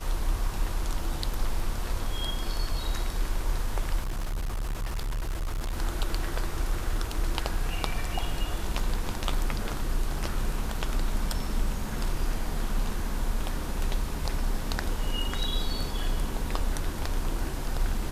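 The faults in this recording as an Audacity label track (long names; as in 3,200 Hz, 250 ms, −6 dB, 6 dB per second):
4.010000	5.730000	clipping −27 dBFS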